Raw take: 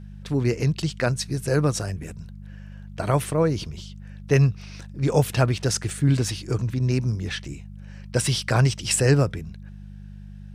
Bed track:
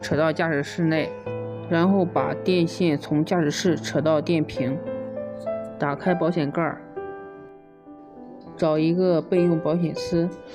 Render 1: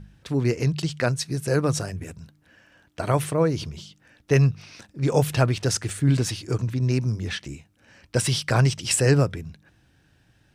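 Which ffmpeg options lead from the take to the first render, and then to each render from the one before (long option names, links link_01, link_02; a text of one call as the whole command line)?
ffmpeg -i in.wav -af "bandreject=frequency=50:width_type=h:width=4,bandreject=frequency=100:width_type=h:width=4,bandreject=frequency=150:width_type=h:width=4,bandreject=frequency=200:width_type=h:width=4" out.wav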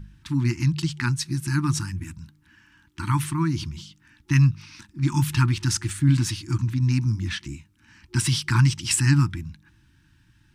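ffmpeg -i in.wav -af "afftfilt=real='re*(1-between(b*sr/4096,360,850))':imag='im*(1-between(b*sr/4096,360,850))':win_size=4096:overlap=0.75,lowshelf=frequency=79:gain=6" out.wav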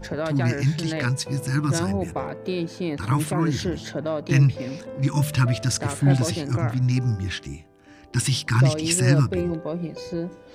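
ffmpeg -i in.wav -i bed.wav -filter_complex "[1:a]volume=-6.5dB[link_01];[0:a][link_01]amix=inputs=2:normalize=0" out.wav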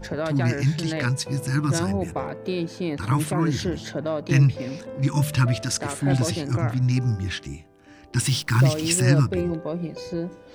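ffmpeg -i in.wav -filter_complex "[0:a]asettb=1/sr,asplit=3[link_01][link_02][link_03];[link_01]atrim=end=5.614[link_04];[link_02]atrim=start=5.61:end=6.13,asetpts=PTS-STARTPTS,afade=type=in:duration=0.004:curve=qsin,afade=type=out:start_time=0.516:duration=0.004:curve=qsin,equalizer=frequency=110:width_type=o:width=1.2:gain=-8[link_05];[link_03]atrim=start=6.126[link_06];[link_04][link_05]acrossfade=duration=0.004:curve1=hsin:curve2=qsin[link_07];[link_07][link_06]acrossfade=duration=0.004:curve1=qsin:curve2=hsin,asettb=1/sr,asplit=3[link_08][link_09][link_10];[link_08]atrim=end=8.214[link_11];[link_09]atrim=start=8.21:end=9.02,asetpts=PTS-STARTPTS,afade=type=in:duration=0.004:curve=qsin,afade=type=out:start_time=0.806:duration=0.004:curve=qsin,acrusher=bits=7:dc=4:mix=0:aa=0.000001[link_12];[link_10]atrim=start=9.016[link_13];[link_11][link_12]acrossfade=duration=0.004:curve1=hsin:curve2=qsin[link_14];[link_14][link_13]acrossfade=duration=0.004:curve1=qsin:curve2=hsin" out.wav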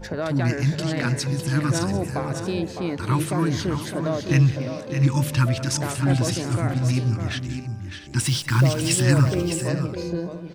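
ffmpeg -i in.wav -af "aecho=1:1:185|608|683:0.158|0.398|0.158" out.wav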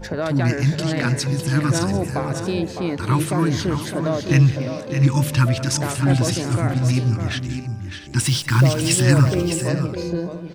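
ffmpeg -i in.wav -af "volume=3dB" out.wav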